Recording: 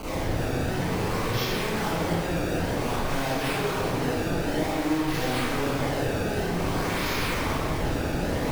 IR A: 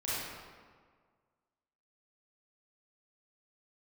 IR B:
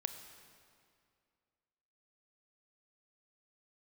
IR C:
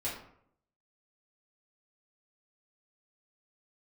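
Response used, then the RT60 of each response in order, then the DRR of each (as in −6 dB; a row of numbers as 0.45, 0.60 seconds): A; 1.7, 2.3, 0.65 seconds; −10.5, 8.0, −9.0 decibels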